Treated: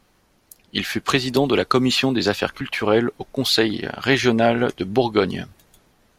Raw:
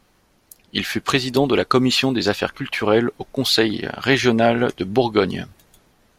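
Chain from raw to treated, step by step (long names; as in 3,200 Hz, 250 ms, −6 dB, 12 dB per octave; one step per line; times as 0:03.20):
0:01.09–0:02.61: multiband upward and downward compressor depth 40%
level −1 dB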